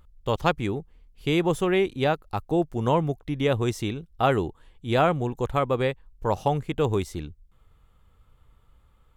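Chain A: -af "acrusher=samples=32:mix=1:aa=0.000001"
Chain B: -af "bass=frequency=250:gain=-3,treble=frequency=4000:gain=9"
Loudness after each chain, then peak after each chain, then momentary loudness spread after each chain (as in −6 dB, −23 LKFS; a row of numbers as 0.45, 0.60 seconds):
−25.5, −26.5 LKFS; −8.5, −6.5 dBFS; 10, 10 LU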